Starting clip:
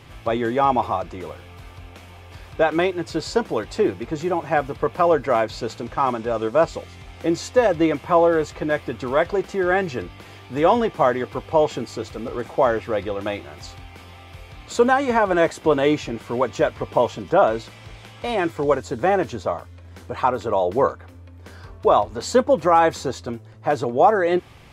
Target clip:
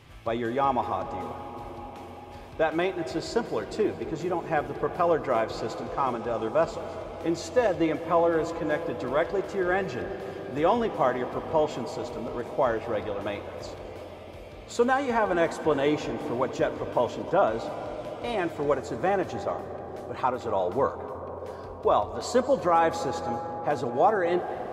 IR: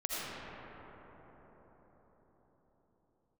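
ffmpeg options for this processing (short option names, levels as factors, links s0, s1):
-filter_complex "[0:a]asplit=2[s0][s1];[1:a]atrim=start_sample=2205,asetrate=27342,aresample=44100,adelay=76[s2];[s1][s2]afir=irnorm=-1:irlink=0,volume=0.112[s3];[s0][s3]amix=inputs=2:normalize=0,volume=0.473"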